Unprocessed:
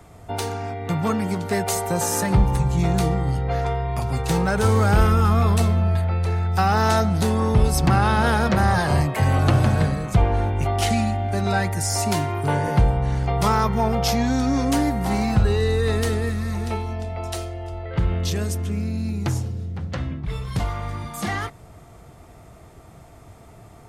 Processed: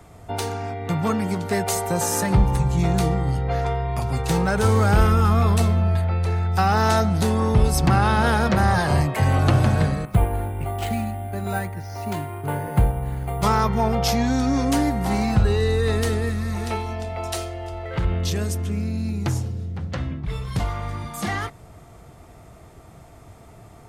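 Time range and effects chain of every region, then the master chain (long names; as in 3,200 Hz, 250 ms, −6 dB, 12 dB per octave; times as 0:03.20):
0:10.05–0:13.43: high-frequency loss of the air 140 metres + bad sample-rate conversion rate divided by 4×, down filtered, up hold + expander for the loud parts, over −28 dBFS
0:16.56–0:18.05: low-shelf EQ 380 Hz −6 dB + leveller curve on the samples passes 1
whole clip: no processing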